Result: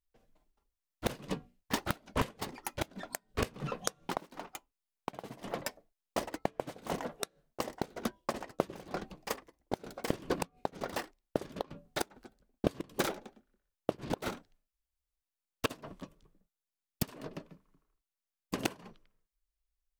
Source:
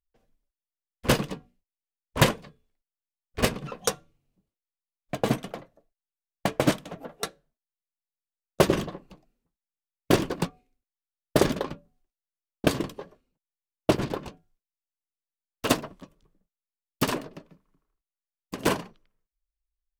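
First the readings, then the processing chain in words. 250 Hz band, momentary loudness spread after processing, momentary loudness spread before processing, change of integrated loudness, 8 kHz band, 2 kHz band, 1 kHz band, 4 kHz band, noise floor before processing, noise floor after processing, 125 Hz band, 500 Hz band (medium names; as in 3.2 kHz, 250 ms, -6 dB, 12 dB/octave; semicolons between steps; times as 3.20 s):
-9.5 dB, 11 LU, 18 LU, -11.0 dB, -7.5 dB, -8.5 dB, -6.0 dB, -9.0 dB, under -85 dBFS, under -85 dBFS, -11.0 dB, -8.5 dB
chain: ever faster or slower copies 246 ms, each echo +5 st, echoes 2, each echo -6 dB; inverted gate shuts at -16 dBFS, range -24 dB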